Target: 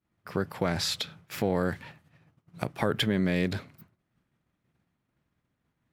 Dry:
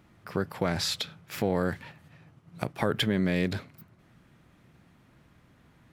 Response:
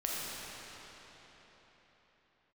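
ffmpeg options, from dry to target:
-af "agate=range=-33dB:threshold=-47dB:ratio=3:detection=peak"

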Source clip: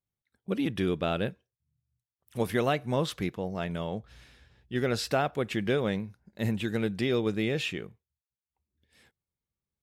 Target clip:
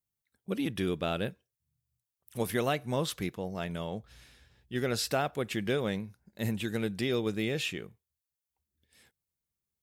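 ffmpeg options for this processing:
ffmpeg -i in.wav -af "highshelf=frequency=6100:gain=10.5,volume=-3dB" out.wav

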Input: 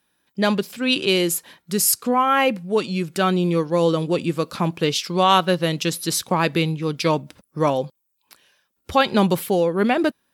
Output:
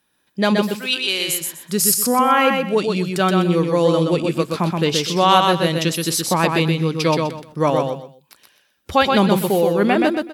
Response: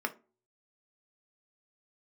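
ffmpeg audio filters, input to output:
-filter_complex "[0:a]asplit=3[link_01][link_02][link_03];[link_01]afade=type=out:start_time=0.65:duration=0.02[link_04];[link_02]highpass=frequency=1500:poles=1,afade=type=in:start_time=0.65:duration=0.02,afade=type=out:start_time=1.28:duration=0.02[link_05];[link_03]afade=type=in:start_time=1.28:duration=0.02[link_06];[link_04][link_05][link_06]amix=inputs=3:normalize=0,aecho=1:1:125|250|375:0.631|0.158|0.0394,volume=1.5dB"

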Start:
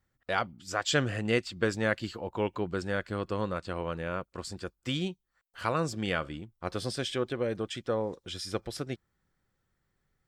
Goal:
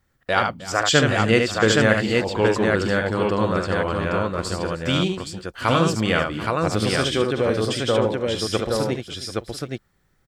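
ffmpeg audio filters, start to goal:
ffmpeg -i in.wav -af "aecho=1:1:45|74|311|737|820:0.224|0.562|0.133|0.141|0.708,volume=9dB" out.wav

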